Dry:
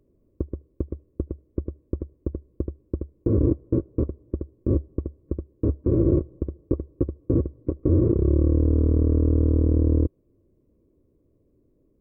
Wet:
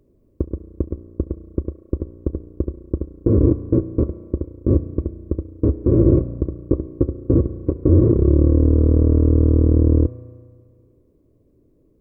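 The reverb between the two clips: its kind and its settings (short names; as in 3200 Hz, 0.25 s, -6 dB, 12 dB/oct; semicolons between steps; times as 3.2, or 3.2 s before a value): spring tank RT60 1.9 s, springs 34 ms, chirp 70 ms, DRR 12.5 dB; gain +5.5 dB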